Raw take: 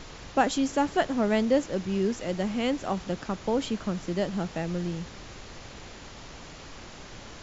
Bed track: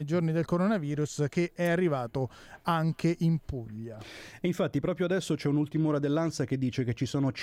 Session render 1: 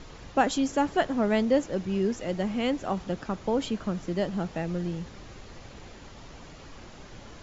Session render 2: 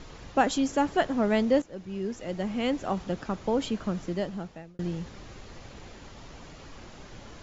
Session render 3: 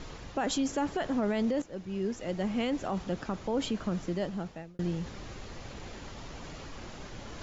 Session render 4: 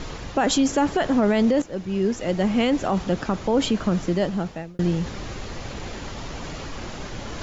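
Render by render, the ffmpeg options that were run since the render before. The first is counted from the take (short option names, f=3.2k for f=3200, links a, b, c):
-af "afftdn=nr=6:nf=-45"
-filter_complex "[0:a]asplit=3[a][b][c];[a]atrim=end=1.62,asetpts=PTS-STARTPTS,afade=t=out:st=1.616:d=0.004:c=hsin:silence=0.211349[d];[b]atrim=start=1.62:end=4.79,asetpts=PTS-STARTPTS,afade=t=in:d=1.13:silence=0.211349,afade=t=out:st=2.4:d=0.77[e];[c]atrim=start=4.79,asetpts=PTS-STARTPTS,afade=t=in:d=0.004:c=hsin[f];[d][e][f]concat=n=3:v=0:a=1"
-af "alimiter=limit=-22.5dB:level=0:latency=1:release=24,areverse,acompressor=mode=upward:threshold=-37dB:ratio=2.5,areverse"
-af "volume=10dB"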